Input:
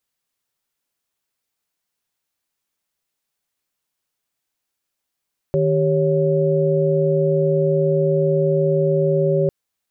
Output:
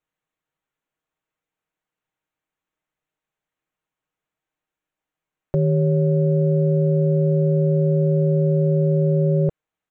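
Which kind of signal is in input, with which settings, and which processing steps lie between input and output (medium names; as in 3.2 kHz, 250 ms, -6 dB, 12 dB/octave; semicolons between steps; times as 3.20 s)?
chord D#3/G4/C#5 sine, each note -19 dBFS 3.95 s
local Wiener filter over 9 samples; comb 6.4 ms, depth 41%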